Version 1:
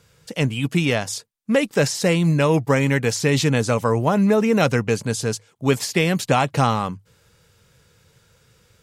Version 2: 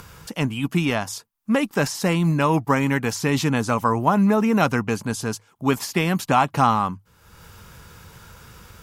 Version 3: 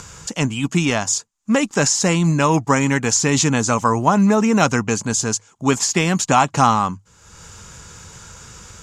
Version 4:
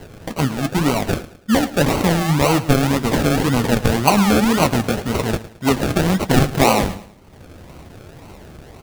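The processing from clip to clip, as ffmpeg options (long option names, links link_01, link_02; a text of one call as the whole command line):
ffmpeg -i in.wav -af "equalizer=frequency=125:width_type=o:width=1:gain=-9,equalizer=frequency=500:width_type=o:width=1:gain=-11,equalizer=frequency=1000:width_type=o:width=1:gain=4,equalizer=frequency=2000:width_type=o:width=1:gain=-6,equalizer=frequency=4000:width_type=o:width=1:gain=-7,equalizer=frequency=8000:width_type=o:width=1:gain=-8,acompressor=mode=upward:threshold=-36dB:ratio=2.5,volume=4.5dB" out.wav
ffmpeg -i in.wav -af "lowpass=frequency=7000:width_type=q:width=5.4,volume=3dB" out.wav
ffmpeg -i in.wav -af "acrusher=samples=36:mix=1:aa=0.000001:lfo=1:lforange=21.6:lforate=1.9,flanger=delay=7.2:depth=7.4:regen=-57:speed=1.1:shape=sinusoidal,aecho=1:1:109|218|327:0.158|0.0602|0.0229,volume=4.5dB" out.wav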